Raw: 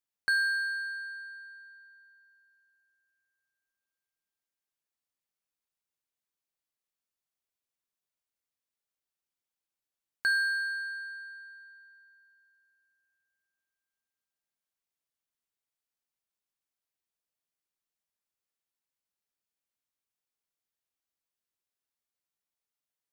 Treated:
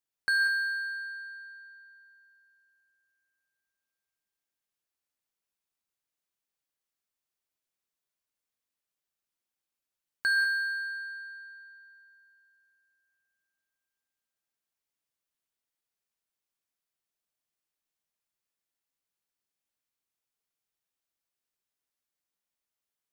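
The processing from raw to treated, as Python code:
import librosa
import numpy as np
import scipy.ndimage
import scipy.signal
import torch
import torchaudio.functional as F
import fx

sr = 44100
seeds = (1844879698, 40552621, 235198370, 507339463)

y = fx.rev_gated(x, sr, seeds[0], gate_ms=220, shape='rising', drr_db=5.0)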